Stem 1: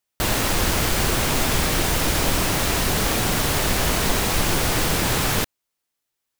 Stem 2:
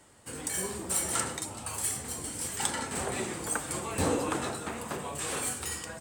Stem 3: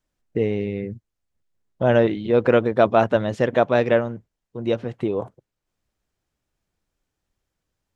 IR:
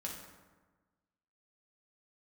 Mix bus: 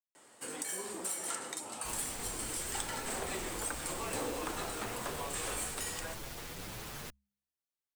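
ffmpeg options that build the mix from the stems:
-filter_complex "[0:a]asoftclip=type=tanh:threshold=-24dB,bandreject=frequency=67.19:width_type=h:width=4,bandreject=frequency=134.38:width_type=h:width=4,bandreject=frequency=201.57:width_type=h:width=4,asplit=2[link_01][link_02];[link_02]adelay=7.6,afreqshift=1.6[link_03];[link_01][link_03]amix=inputs=2:normalize=1,adelay=1650,volume=-14dB[link_04];[1:a]adelay=150,volume=0dB,highpass=290,acompressor=threshold=-37dB:ratio=3,volume=0dB[link_05];[link_04][link_05]amix=inputs=2:normalize=0"

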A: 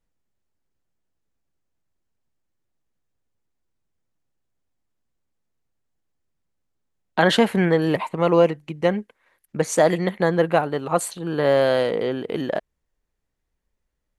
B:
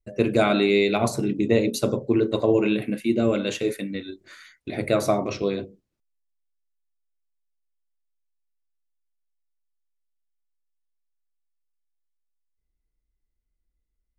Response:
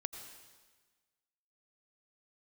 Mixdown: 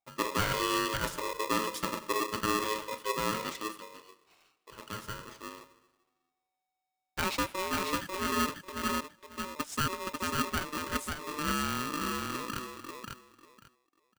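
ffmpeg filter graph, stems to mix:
-filter_complex "[0:a]equalizer=frequency=410:width_type=o:width=0.28:gain=4,volume=-15dB,asplit=3[link_01][link_02][link_03];[link_02]volume=-21.5dB[link_04];[link_03]volume=-3.5dB[link_05];[1:a]volume=-13dB,afade=type=out:start_time=3.48:duration=0.48:silence=0.354813,asplit=2[link_06][link_07];[link_07]volume=-4.5dB[link_08];[2:a]atrim=start_sample=2205[link_09];[link_04][link_08]amix=inputs=2:normalize=0[link_10];[link_10][link_09]afir=irnorm=-1:irlink=0[link_11];[link_05]aecho=0:1:544|1088|1632:1|0.19|0.0361[link_12];[link_01][link_06][link_11][link_12]amix=inputs=4:normalize=0,lowshelf=frequency=140:gain=-6.5,aeval=exprs='val(0)*sgn(sin(2*PI*750*n/s))':channel_layout=same"

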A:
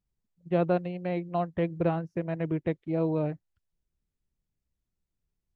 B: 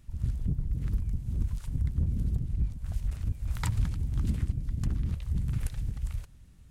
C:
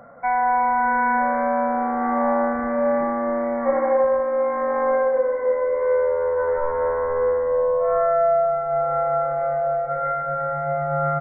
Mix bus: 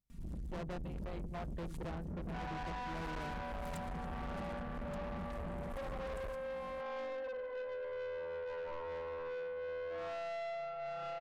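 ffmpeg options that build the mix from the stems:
ffmpeg -i stem1.wav -i stem2.wav -i stem3.wav -filter_complex "[0:a]volume=-7dB[link_01];[1:a]equalizer=frequency=170:width=1.8:gain=12.5,acompressor=threshold=-31dB:ratio=6,aecho=1:1:4.3:0.99,adelay=100,volume=-2dB[link_02];[2:a]adelay=2100,volume=-15dB[link_03];[link_01][link_02][link_03]amix=inputs=3:normalize=0,asoftclip=type=tanh:threshold=-39.5dB" out.wav

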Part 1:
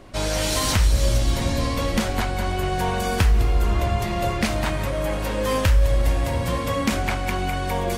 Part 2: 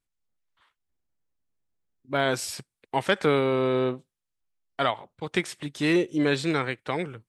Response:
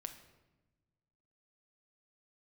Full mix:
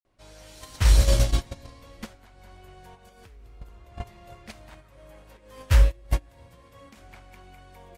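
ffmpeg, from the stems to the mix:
-filter_complex "[0:a]equalizer=frequency=220:width=1.5:gain=-3.5,adelay=50,volume=1dB,asplit=2[link_01][link_02];[link_02]volume=-17dB[link_03];[1:a]asplit=2[link_04][link_05];[link_05]afreqshift=-1.5[link_06];[link_04][link_06]amix=inputs=2:normalize=1,volume=-15dB,asplit=2[link_07][link_08];[link_08]apad=whole_len=354060[link_09];[link_01][link_09]sidechaincompress=threshold=-46dB:ratio=6:attack=16:release=136[link_10];[2:a]atrim=start_sample=2205[link_11];[link_03][link_11]afir=irnorm=-1:irlink=0[link_12];[link_10][link_07][link_12]amix=inputs=3:normalize=0,agate=range=-26dB:threshold=-16dB:ratio=16:detection=peak"

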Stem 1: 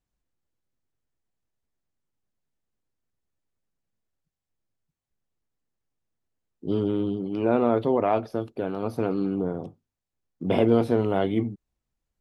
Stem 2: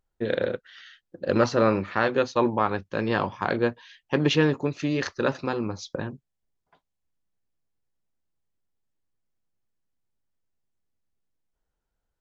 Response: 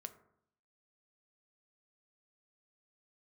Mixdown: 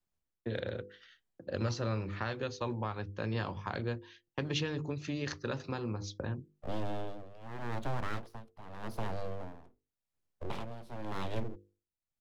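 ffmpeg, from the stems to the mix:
-filter_complex "[0:a]acrossover=split=130|3000[link_01][link_02][link_03];[link_02]acompressor=threshold=-32dB:ratio=2[link_04];[link_01][link_04][link_03]amix=inputs=3:normalize=0,aeval=exprs='abs(val(0))':channel_layout=same,tremolo=f=0.88:d=0.84,volume=-1.5dB[link_05];[1:a]bandreject=frequency=156.3:width_type=h:width=4,bandreject=frequency=312.6:width_type=h:width=4,agate=range=-28dB:threshold=-46dB:ratio=16:detection=peak,equalizer=frequency=85:width=1.2:gain=10.5,adelay=250,volume=-6.5dB[link_06];[link_05][link_06]amix=inputs=2:normalize=0,bandreject=frequency=50:width_type=h:width=6,bandreject=frequency=100:width_type=h:width=6,bandreject=frequency=150:width_type=h:width=6,bandreject=frequency=200:width_type=h:width=6,bandreject=frequency=250:width_type=h:width=6,bandreject=frequency=300:width_type=h:width=6,bandreject=frequency=350:width_type=h:width=6,bandreject=frequency=400:width_type=h:width=6,bandreject=frequency=450:width_type=h:width=6,bandreject=frequency=500:width_type=h:width=6,acrossover=split=130|3000[link_07][link_08][link_09];[link_08]acompressor=threshold=-34dB:ratio=6[link_10];[link_07][link_10][link_09]amix=inputs=3:normalize=0"

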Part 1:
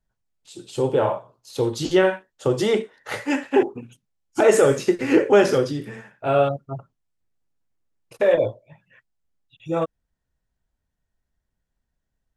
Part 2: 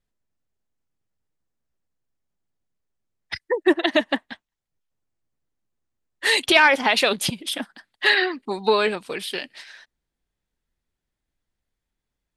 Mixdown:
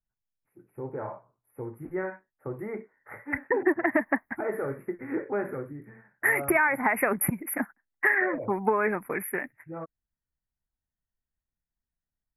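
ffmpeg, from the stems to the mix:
ffmpeg -i stem1.wav -i stem2.wav -filter_complex "[0:a]volume=-12.5dB[link_01];[1:a]agate=range=-30dB:threshold=-38dB:ratio=16:detection=peak,highshelf=frequency=6400:gain=9.5,volume=2dB[link_02];[link_01][link_02]amix=inputs=2:normalize=0,asuperstop=centerf=5200:order=20:qfactor=0.61,equalizer=frequency=510:width_type=o:width=0.73:gain=-5,acompressor=threshold=-20dB:ratio=6" out.wav

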